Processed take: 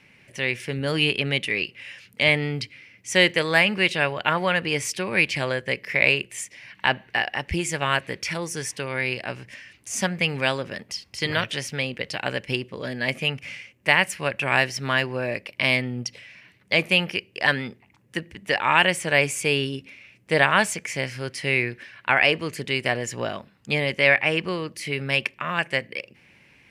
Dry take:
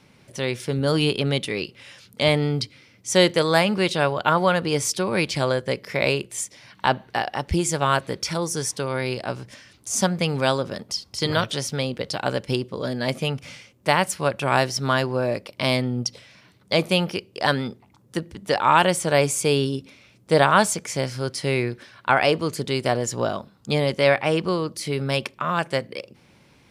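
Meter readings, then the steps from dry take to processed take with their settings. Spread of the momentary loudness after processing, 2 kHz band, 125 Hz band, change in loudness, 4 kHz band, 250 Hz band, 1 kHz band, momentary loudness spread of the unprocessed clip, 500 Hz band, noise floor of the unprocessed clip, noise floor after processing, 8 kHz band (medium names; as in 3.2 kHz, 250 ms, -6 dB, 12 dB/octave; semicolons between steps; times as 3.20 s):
14 LU, +5.5 dB, -4.5 dB, -0.5 dB, +1.0 dB, -4.5 dB, -4.5 dB, 11 LU, -4.5 dB, -56 dBFS, -58 dBFS, -4.5 dB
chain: high-order bell 2.2 kHz +11.5 dB 1 oct; trim -4.5 dB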